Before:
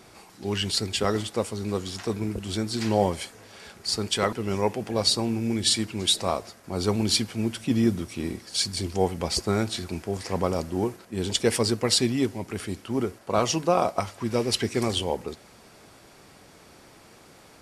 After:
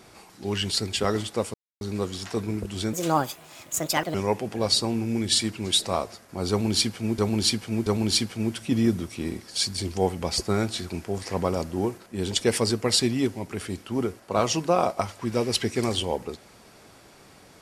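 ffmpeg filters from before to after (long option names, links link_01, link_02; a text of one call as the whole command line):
ffmpeg -i in.wav -filter_complex "[0:a]asplit=6[link_01][link_02][link_03][link_04][link_05][link_06];[link_01]atrim=end=1.54,asetpts=PTS-STARTPTS,afade=type=out:start_time=1.536:duration=0.004:curve=hsin,apad=pad_dur=0.27[link_07];[link_02]atrim=start=1.54:end=2.664,asetpts=PTS-STARTPTS,afade=type=in:duration=0.004:curve=hsin[link_08];[link_03]atrim=start=2.66:end=4.49,asetpts=PTS-STARTPTS,asetrate=66591,aresample=44100[link_09];[link_04]atrim=start=4.486:end=7.532[link_10];[link_05]atrim=start=6.848:end=7.532[link_11];[link_06]atrim=start=6.848[link_12];[link_07][link_08]concat=n=2:v=0:a=1[link_13];[link_13][link_09]acrossfade=duration=0.004:curve1=hsin:curve2=hsin[link_14];[link_14][link_10]acrossfade=duration=0.004:curve1=hsin:curve2=hsin[link_15];[link_15][link_11]acrossfade=duration=0.004:curve1=hsin:curve2=hsin[link_16];[link_16][link_12]acrossfade=duration=0.004:curve1=hsin:curve2=hsin" out.wav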